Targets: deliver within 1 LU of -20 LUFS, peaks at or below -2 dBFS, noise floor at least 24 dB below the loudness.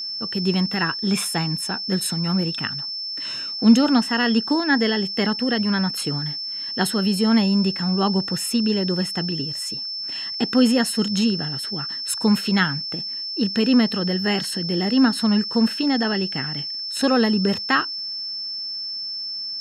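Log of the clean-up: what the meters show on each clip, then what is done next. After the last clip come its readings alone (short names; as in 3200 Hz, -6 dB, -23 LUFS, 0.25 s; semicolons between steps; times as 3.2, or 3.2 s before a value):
ticks 36/s; steady tone 5300 Hz; tone level -27 dBFS; loudness -21.5 LUFS; peak -4.0 dBFS; loudness target -20.0 LUFS
-> de-click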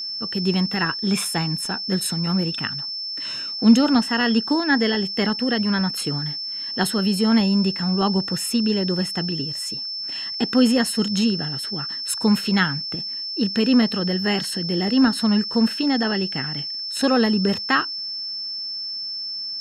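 ticks 0.10/s; steady tone 5300 Hz; tone level -27 dBFS
-> notch 5300 Hz, Q 30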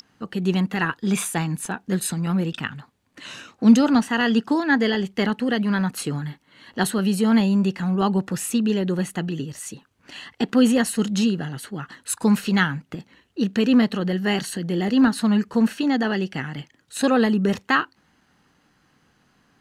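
steady tone none; loudness -22.0 LUFS; peak -4.5 dBFS; loudness target -20.0 LUFS
-> gain +2 dB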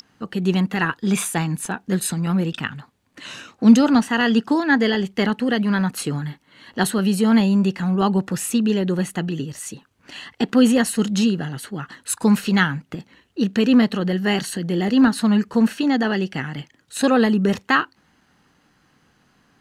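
loudness -20.0 LUFS; peak -2.5 dBFS; noise floor -62 dBFS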